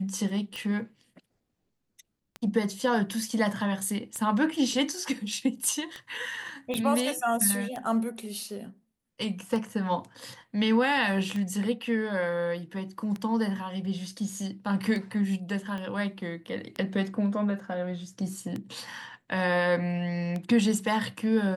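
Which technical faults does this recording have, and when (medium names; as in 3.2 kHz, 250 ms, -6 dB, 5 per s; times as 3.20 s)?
tick 33 1/3 rpm -21 dBFS
6.74 s: pop -19 dBFS
15.78 s: pop -25 dBFS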